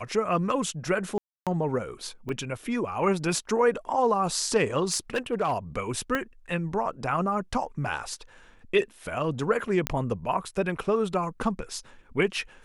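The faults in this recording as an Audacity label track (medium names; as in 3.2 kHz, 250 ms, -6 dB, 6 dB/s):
1.180000	1.470000	dropout 287 ms
2.290000	2.290000	dropout 2.2 ms
4.920000	5.530000	clipped -20 dBFS
6.150000	6.150000	pop -13 dBFS
9.870000	9.870000	pop -9 dBFS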